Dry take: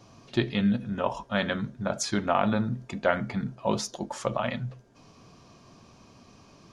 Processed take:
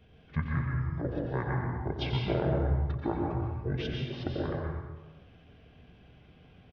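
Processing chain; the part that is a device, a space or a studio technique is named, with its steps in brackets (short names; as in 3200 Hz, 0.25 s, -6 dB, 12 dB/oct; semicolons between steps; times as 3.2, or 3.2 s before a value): monster voice (pitch shift -7.5 st; formant shift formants -3.5 st; low shelf 150 Hz +3.5 dB; echo 89 ms -11 dB; reverb RT60 1.2 s, pre-delay 0.114 s, DRR -0.5 dB); gain -7 dB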